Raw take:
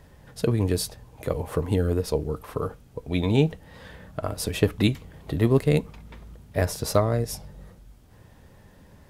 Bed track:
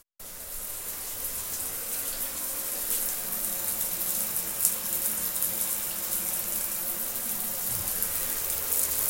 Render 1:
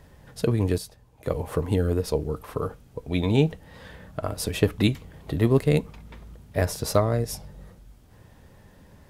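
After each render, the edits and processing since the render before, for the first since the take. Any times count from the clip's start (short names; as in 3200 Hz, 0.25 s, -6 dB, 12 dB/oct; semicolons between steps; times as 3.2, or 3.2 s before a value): 0.78–1.26 gain -9 dB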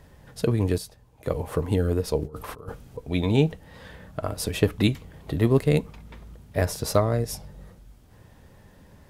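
2.22–2.98 negative-ratio compressor -34 dBFS, ratio -0.5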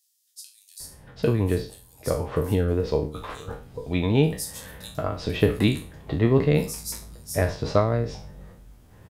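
spectral trails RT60 0.38 s; bands offset in time highs, lows 0.8 s, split 4800 Hz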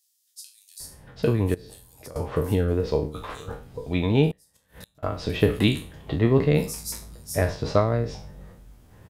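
1.54–2.16 compressor 8:1, threshold -38 dBFS; 4.31–5.03 flipped gate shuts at -28 dBFS, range -28 dB; 5.53–6.16 bell 3100 Hz +7 dB 0.37 oct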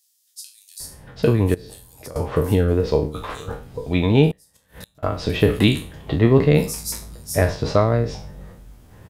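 gain +5 dB; limiter -3 dBFS, peak gain reduction 2.5 dB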